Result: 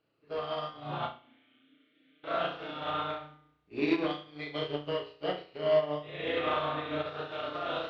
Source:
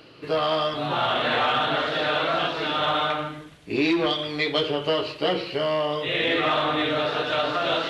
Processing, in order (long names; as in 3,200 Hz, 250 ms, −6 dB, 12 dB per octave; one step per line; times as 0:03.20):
low-pass filter 6,600 Hz 12 dB per octave
high-shelf EQ 3,400 Hz −9 dB
0:01.07–0:02.24: formant filter i
flutter between parallel walls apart 5.8 metres, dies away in 0.76 s
expander for the loud parts 2.5 to 1, over −32 dBFS
level −5 dB